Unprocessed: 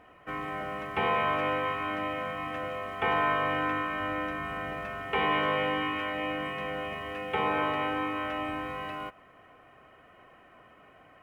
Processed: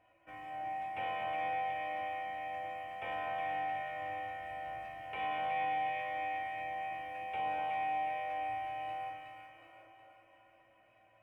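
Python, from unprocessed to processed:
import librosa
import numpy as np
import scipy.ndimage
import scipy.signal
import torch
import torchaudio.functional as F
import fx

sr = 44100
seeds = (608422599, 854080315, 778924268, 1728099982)

p1 = fx.graphic_eq_31(x, sr, hz=(100, 160, 250, 400, 630, 1250, 2500, 4000), db=(-5, -7, -4, -9, 8, -9, 6, -4))
p2 = fx.spec_box(p1, sr, start_s=9.56, length_s=0.33, low_hz=260.0, high_hz=1500.0, gain_db=9)
p3 = fx.comb_fb(p2, sr, f0_hz=110.0, decay_s=0.4, harmonics='odd', damping=0.0, mix_pct=90)
y = p3 + fx.echo_split(p3, sr, split_hz=940.0, low_ms=239, high_ms=367, feedback_pct=52, wet_db=-4.0, dry=0)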